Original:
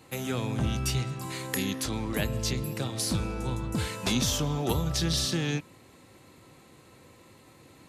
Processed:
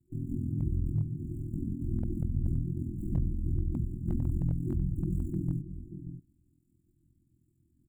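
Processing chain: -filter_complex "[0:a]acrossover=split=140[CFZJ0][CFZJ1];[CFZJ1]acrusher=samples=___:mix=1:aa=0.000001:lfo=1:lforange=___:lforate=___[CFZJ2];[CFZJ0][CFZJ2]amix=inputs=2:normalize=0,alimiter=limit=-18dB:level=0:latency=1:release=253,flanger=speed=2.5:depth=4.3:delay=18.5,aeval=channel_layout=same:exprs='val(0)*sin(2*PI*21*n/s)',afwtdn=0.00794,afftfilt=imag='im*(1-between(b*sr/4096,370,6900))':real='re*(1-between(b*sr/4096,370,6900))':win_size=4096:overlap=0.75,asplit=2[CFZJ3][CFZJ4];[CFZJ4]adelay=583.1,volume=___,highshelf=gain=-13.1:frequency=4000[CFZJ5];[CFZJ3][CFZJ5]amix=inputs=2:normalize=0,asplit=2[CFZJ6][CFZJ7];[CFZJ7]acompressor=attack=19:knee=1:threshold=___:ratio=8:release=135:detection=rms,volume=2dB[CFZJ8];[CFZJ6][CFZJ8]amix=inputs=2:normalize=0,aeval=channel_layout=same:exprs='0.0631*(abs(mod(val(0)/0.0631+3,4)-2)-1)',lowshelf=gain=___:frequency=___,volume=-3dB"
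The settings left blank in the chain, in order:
26, 26, 1.3, -15dB, -46dB, 11.5, 140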